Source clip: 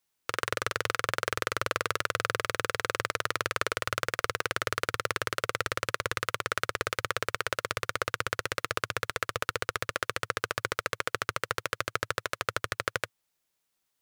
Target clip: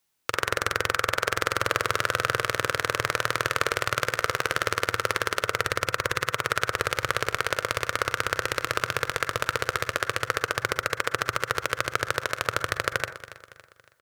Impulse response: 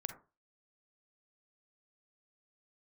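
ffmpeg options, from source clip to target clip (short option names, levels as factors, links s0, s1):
-filter_complex "[0:a]aecho=1:1:280|560|840|1120:0.168|0.0722|0.031|0.0133,asplit=2[s0][s1];[1:a]atrim=start_sample=2205[s2];[s1][s2]afir=irnorm=-1:irlink=0,volume=1.5[s3];[s0][s3]amix=inputs=2:normalize=0,volume=0.794"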